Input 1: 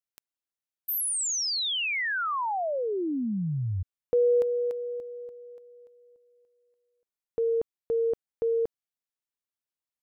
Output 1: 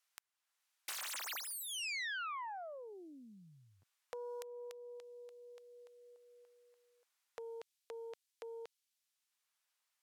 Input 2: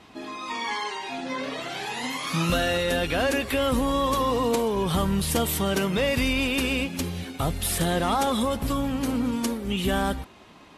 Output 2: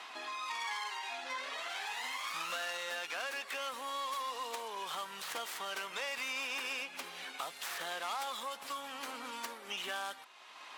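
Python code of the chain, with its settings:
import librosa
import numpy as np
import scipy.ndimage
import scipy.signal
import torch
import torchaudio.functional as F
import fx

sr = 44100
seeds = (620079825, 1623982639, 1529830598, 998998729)

p1 = fx.tracing_dist(x, sr, depth_ms=0.27)
p2 = fx.bandpass_q(p1, sr, hz=1000.0, q=0.94)
p3 = fx.rider(p2, sr, range_db=4, speed_s=2.0)
p4 = p2 + F.gain(torch.from_numpy(p3), -1.5).numpy()
p5 = np.diff(p4, prepend=0.0)
p6 = fx.band_squash(p5, sr, depth_pct=70)
y = F.gain(torch.from_numpy(p6), 1.0).numpy()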